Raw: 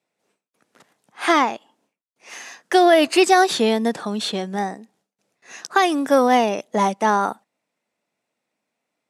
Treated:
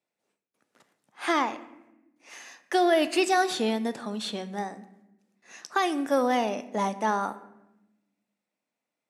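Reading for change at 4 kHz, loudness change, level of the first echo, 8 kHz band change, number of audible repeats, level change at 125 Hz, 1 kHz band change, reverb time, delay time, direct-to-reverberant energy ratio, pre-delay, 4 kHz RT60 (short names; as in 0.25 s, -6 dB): -8.5 dB, -8.0 dB, none, -8.5 dB, none, n/a, -8.5 dB, 0.95 s, none, 11.0 dB, 3 ms, 0.65 s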